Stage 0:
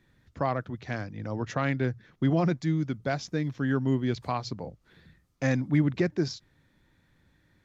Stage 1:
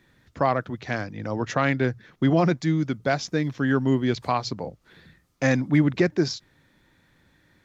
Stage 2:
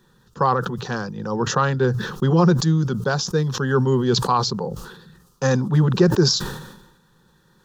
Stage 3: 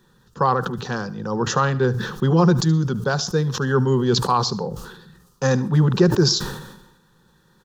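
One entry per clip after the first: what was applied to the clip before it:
low shelf 170 Hz -7.5 dB; gain +7 dB
fixed phaser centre 430 Hz, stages 8; sustainer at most 58 dB/s; gain +7 dB
echo 74 ms -19 dB; on a send at -22.5 dB: reverb RT60 0.40 s, pre-delay 0.112 s

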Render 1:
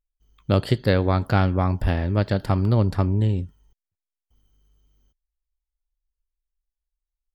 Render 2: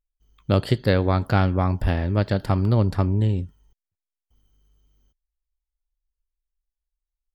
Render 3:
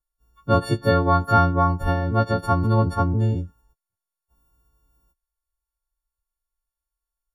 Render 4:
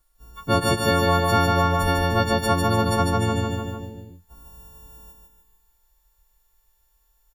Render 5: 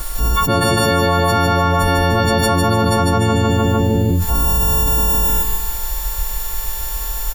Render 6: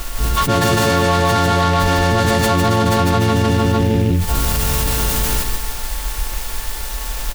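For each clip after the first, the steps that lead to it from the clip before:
nothing audible
frequency quantiser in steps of 4 st; resonant high shelf 1700 Hz -9 dB, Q 3
on a send: feedback echo 0.15 s, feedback 42%, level -5 dB; on the sum: spectral compressor 2:1; gain -2.5 dB
fast leveller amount 100%; gain +2 dB
reverb RT60 0.40 s, pre-delay 4 ms, DRR 15.5 dB; noise-modulated delay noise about 2300 Hz, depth 0.046 ms

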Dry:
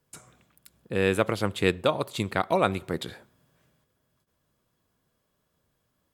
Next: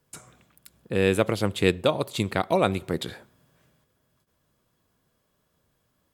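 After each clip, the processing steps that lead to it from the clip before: dynamic EQ 1300 Hz, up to -5 dB, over -39 dBFS, Q 0.95; gain +3 dB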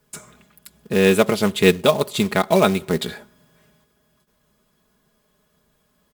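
comb 4.8 ms, depth 68%; short-mantissa float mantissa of 2-bit; gain +5 dB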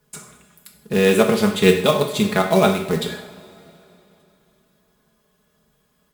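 two-slope reverb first 0.63 s, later 3.2 s, from -18 dB, DRR 3 dB; gain -1.5 dB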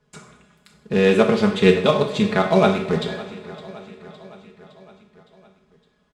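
air absorption 110 m; feedback echo 0.562 s, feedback 59%, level -18 dB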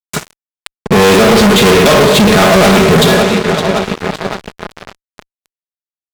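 fuzz box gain 36 dB, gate -40 dBFS; gain +7.5 dB

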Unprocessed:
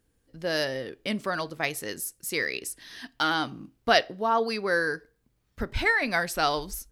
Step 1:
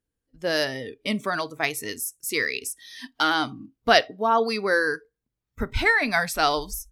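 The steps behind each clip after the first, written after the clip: spectral noise reduction 17 dB; gain +3.5 dB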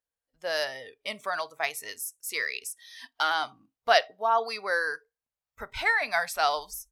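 resonant low shelf 440 Hz -13.5 dB, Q 1.5; gain -5 dB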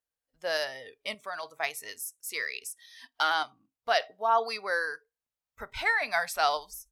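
random-step tremolo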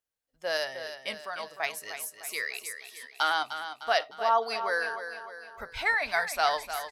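feedback echo 0.304 s, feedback 50%, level -10 dB

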